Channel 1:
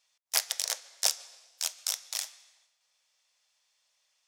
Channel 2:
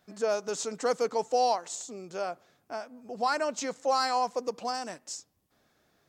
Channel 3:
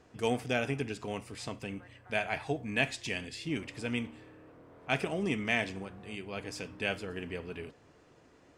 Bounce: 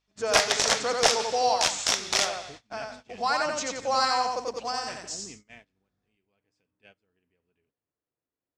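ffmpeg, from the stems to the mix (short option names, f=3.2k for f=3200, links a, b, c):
-filter_complex "[0:a]asplit=2[a][b];[b]highpass=f=720:p=1,volume=27dB,asoftclip=type=tanh:threshold=-2.5dB[c];[a][c]amix=inputs=2:normalize=0,lowpass=f=2k:p=1,volume=-6dB,volume=2dB[d];[1:a]tiltshelf=f=730:g=-5,aeval=exprs='val(0)+0.00141*(sin(2*PI*50*n/s)+sin(2*PI*2*50*n/s)/2+sin(2*PI*3*50*n/s)/3+sin(2*PI*4*50*n/s)/4+sin(2*PI*5*50*n/s)/5)':c=same,volume=-0.5dB,asplit=2[e][f];[f]volume=-3dB[g];[2:a]acompressor=threshold=-41dB:ratio=2,volume=-8dB[h];[g]aecho=0:1:88|176|264|352|440:1|0.35|0.122|0.0429|0.015[i];[d][e][h][i]amix=inputs=4:normalize=0,agate=range=-25dB:threshold=-44dB:ratio=16:detection=peak,lowpass=7.5k"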